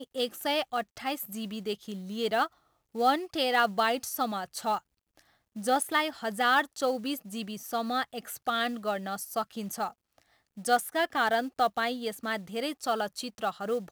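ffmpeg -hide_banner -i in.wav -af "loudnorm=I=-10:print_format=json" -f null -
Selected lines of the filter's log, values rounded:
"input_i" : "-30.3",
"input_tp" : "-10.3",
"input_lra" : "3.6",
"input_thresh" : "-40.6",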